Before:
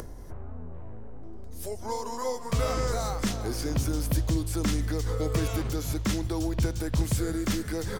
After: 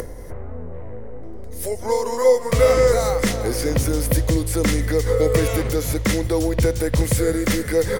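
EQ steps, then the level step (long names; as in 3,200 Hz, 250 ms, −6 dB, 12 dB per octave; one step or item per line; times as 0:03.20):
thirty-one-band graphic EQ 500 Hz +12 dB, 2,000 Hz +9 dB, 10,000 Hz +6 dB, 16,000 Hz +7 dB
+6.5 dB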